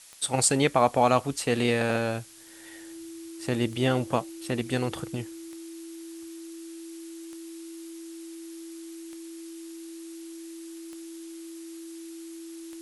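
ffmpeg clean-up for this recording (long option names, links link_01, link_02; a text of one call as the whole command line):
ffmpeg -i in.wav -af "adeclick=threshold=4,bandreject=frequency=330:width=30,afftdn=noise_reduction=30:noise_floor=-42" out.wav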